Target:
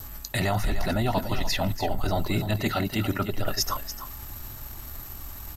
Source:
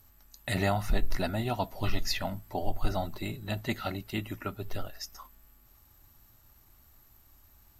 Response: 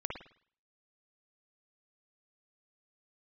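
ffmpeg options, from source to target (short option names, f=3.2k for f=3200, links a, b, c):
-af "apsyclip=27dB,areverse,acompressor=threshold=-17dB:ratio=6,areverse,adynamicequalizer=threshold=0.00501:dfrequency=2400:dqfactor=7.7:tfrequency=2400:tqfactor=7.7:attack=5:release=100:ratio=0.375:range=2.5:mode=cutabove:tftype=bell,aecho=1:1:411:0.316,atempo=1.4,volume=-6.5dB"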